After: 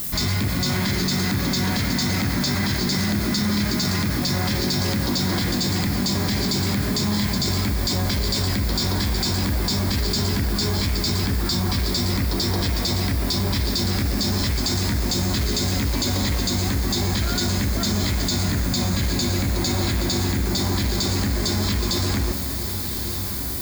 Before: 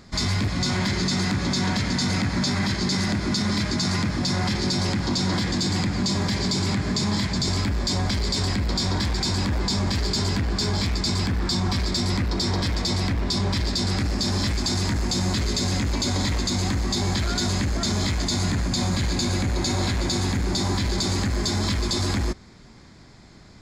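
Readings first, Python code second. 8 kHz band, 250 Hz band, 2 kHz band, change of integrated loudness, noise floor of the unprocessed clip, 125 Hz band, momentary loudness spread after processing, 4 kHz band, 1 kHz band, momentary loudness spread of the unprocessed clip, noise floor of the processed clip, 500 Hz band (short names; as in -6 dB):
+2.5 dB, +1.5 dB, +1.5 dB, +2.0 dB, -47 dBFS, +1.5 dB, 1 LU, +1.5 dB, +0.5 dB, 1 LU, -26 dBFS, +1.5 dB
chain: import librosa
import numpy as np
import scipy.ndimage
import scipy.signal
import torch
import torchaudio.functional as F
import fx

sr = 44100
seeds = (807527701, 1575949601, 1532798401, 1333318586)

p1 = fx.peak_eq(x, sr, hz=910.0, db=-2.0, octaves=0.77)
p2 = fx.comb_fb(p1, sr, f0_hz=69.0, decay_s=1.9, harmonics='all', damping=0.0, mix_pct=60)
p3 = p2 + fx.echo_diffused(p2, sr, ms=1185, feedback_pct=48, wet_db=-13, dry=0)
p4 = fx.dmg_noise_colour(p3, sr, seeds[0], colour='violet', level_db=-44.0)
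p5 = fx.env_flatten(p4, sr, amount_pct=50)
y = F.gain(torch.from_numpy(p5), 7.0).numpy()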